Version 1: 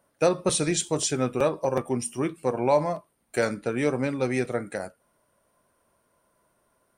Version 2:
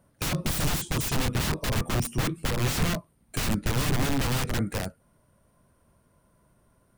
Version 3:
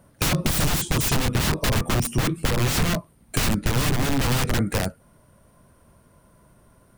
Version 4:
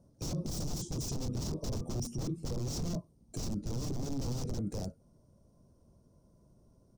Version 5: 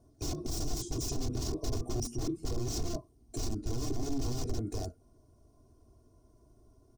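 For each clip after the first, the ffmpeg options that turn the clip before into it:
-af "aeval=exprs='(mod(18.8*val(0)+1,2)-1)/18.8':c=same,bass=f=250:g=15,treble=f=4k:g=0"
-af "acompressor=threshold=-26dB:ratio=6,volume=8.5dB"
-af "firequalizer=gain_entry='entry(360,0);entry(1700,-23);entry(2900,-18);entry(5600,1);entry(9500,-14)':delay=0.05:min_phase=1,alimiter=limit=-21.5dB:level=0:latency=1:release=13,volume=-7dB"
-af "aecho=1:1:2.8:0.9"

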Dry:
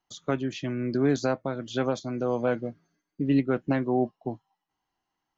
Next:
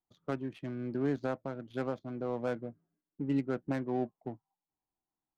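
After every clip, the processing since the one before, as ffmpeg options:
-af "adynamicsmooth=sensitivity=4.5:basefreq=950,volume=-8dB"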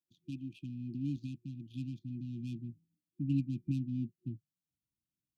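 -af "highpass=100,afftfilt=real='re*(1-between(b*sr/4096,360,2400))':imag='im*(1-between(b*sr/4096,360,2400))':win_size=4096:overlap=0.75,asubboost=boost=6.5:cutoff=160,volume=-3dB"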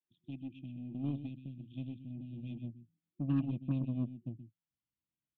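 -af "aresample=8000,aresample=44100,aecho=1:1:127:0.376,aeval=exprs='0.075*(cos(1*acos(clip(val(0)/0.075,-1,1)))-cos(1*PI/2))+0.00376*(cos(7*acos(clip(val(0)/0.075,-1,1)))-cos(7*PI/2))+0.00106*(cos(8*acos(clip(val(0)/0.075,-1,1)))-cos(8*PI/2))':c=same"

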